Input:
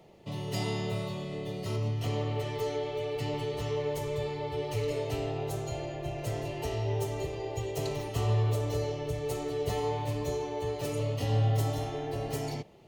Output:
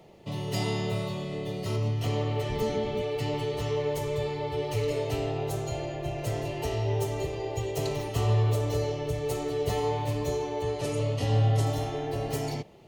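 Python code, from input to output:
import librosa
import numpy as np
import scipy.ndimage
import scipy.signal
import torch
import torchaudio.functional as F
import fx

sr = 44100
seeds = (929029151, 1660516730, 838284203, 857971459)

y = fx.octave_divider(x, sr, octaves=1, level_db=1.0, at=(2.49, 3.02))
y = fx.lowpass(y, sr, hz=11000.0, slope=24, at=(10.62, 11.65), fade=0.02)
y = y * librosa.db_to_amplitude(3.0)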